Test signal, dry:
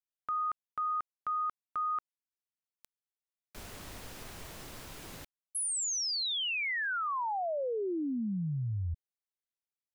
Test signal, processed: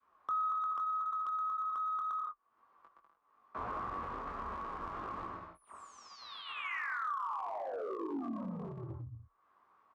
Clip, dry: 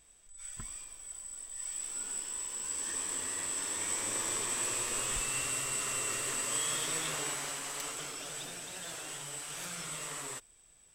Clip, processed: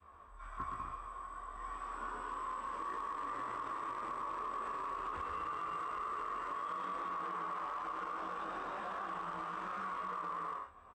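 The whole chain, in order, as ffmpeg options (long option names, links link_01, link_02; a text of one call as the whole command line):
ffmpeg -i in.wav -filter_complex "[0:a]flanger=delay=4.6:depth=9.2:regen=32:speed=0.67:shape=triangular,acompressor=mode=upward:threshold=-56dB:ratio=2.5:attack=0.32:release=332:knee=2.83:detection=peak,volume=34.5dB,asoftclip=hard,volume=-34.5dB,aecho=1:1:120|198|248.7|281.7|303.1:0.631|0.398|0.251|0.158|0.1,asoftclip=type=tanh:threshold=-36dB,lowpass=frequency=1100:width_type=q:width=9.7,asplit=2[link_01][link_02];[link_02]adelay=20,volume=-3.5dB[link_03];[link_01][link_03]amix=inputs=2:normalize=0,acompressor=threshold=-39dB:ratio=8:attack=0.1:release=46:knee=1:detection=rms,adynamicequalizer=threshold=0.00224:dfrequency=760:dqfactor=0.7:tfrequency=760:tqfactor=0.7:attack=5:release=100:ratio=0.375:range=2.5:mode=cutabove:tftype=bell,afreqshift=29,highpass=63,equalizer=frequency=140:width_type=o:width=0.65:gain=-12.5,volume=8dB" out.wav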